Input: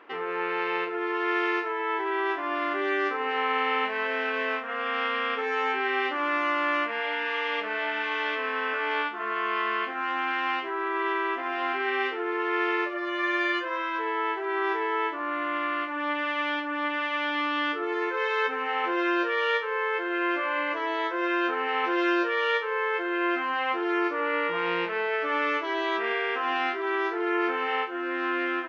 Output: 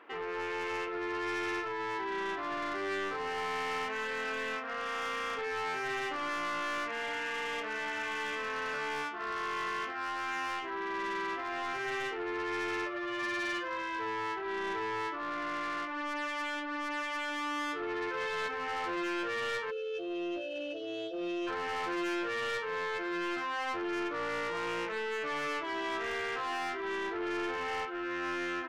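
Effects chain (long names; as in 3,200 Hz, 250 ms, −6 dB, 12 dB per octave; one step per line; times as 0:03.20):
hum removal 132 Hz, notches 10
time-frequency box erased 0:19.71–0:21.47, 840–2,600 Hz
soft clipping −27 dBFS, distortion −10 dB
level −3.5 dB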